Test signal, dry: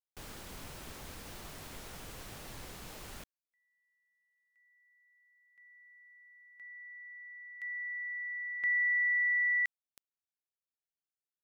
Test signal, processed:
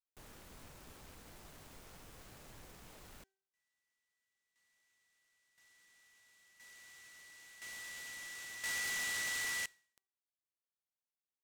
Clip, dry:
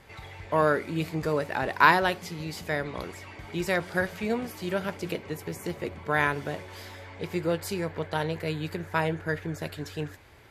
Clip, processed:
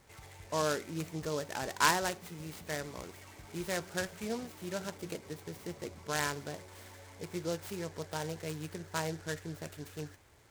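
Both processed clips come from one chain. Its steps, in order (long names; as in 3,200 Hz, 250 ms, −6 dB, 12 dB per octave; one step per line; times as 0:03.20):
hum removal 386.6 Hz, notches 6
short delay modulated by noise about 4,800 Hz, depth 0.062 ms
level −8.5 dB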